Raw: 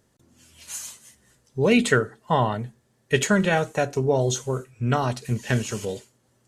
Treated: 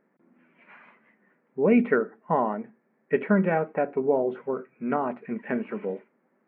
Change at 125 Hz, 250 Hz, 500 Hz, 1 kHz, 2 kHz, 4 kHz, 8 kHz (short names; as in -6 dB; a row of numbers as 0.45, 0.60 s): -11.0 dB, -0.5 dB, -1.0 dB, -2.5 dB, -7.0 dB, under -25 dB, under -40 dB